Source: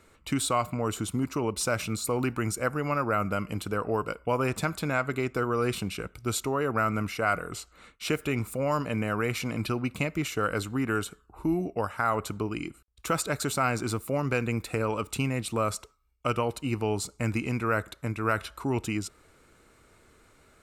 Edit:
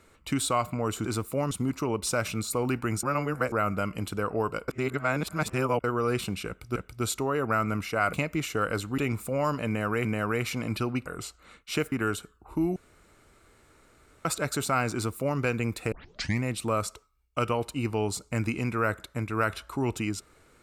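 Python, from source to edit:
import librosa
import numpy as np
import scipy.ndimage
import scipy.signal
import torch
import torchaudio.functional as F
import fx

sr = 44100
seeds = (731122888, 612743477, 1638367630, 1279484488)

y = fx.edit(x, sr, fx.reverse_span(start_s=2.57, length_s=0.49),
    fx.reverse_span(start_s=4.22, length_s=1.16),
    fx.repeat(start_s=6.02, length_s=0.28, count=2),
    fx.swap(start_s=7.39, length_s=0.86, other_s=9.95, other_length_s=0.85),
    fx.repeat(start_s=8.94, length_s=0.38, count=2),
    fx.room_tone_fill(start_s=11.64, length_s=1.49),
    fx.duplicate(start_s=13.81, length_s=0.46, to_s=1.05),
    fx.tape_start(start_s=14.8, length_s=0.51), tone=tone)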